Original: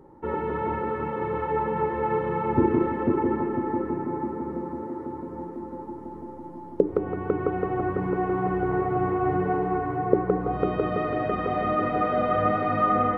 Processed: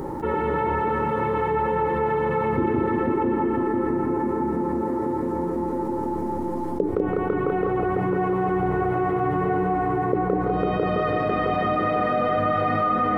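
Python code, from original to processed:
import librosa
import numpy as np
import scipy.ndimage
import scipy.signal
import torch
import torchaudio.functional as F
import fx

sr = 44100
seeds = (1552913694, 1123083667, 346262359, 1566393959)

p1 = fx.high_shelf(x, sr, hz=3400.0, db=9.0)
p2 = p1 + fx.echo_single(p1, sr, ms=199, db=-4.5, dry=0)
p3 = fx.env_flatten(p2, sr, amount_pct=70)
y = p3 * librosa.db_to_amplitude(-4.5)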